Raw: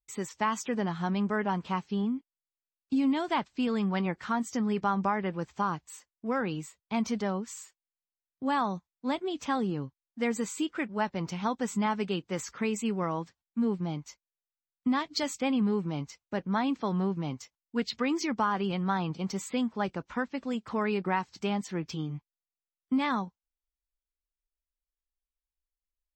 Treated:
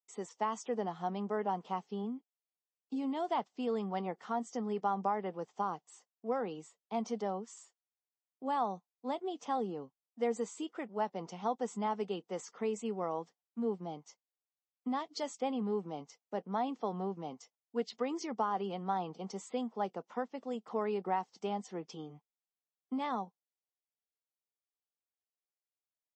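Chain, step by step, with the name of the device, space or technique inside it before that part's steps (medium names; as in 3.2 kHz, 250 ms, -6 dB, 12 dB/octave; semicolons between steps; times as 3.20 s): television speaker (cabinet simulation 200–7600 Hz, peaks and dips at 290 Hz -4 dB, 460 Hz +7 dB, 740 Hz +9 dB, 1.6 kHz -8 dB, 2.4 kHz -8 dB, 4.1 kHz -6 dB); trim -7 dB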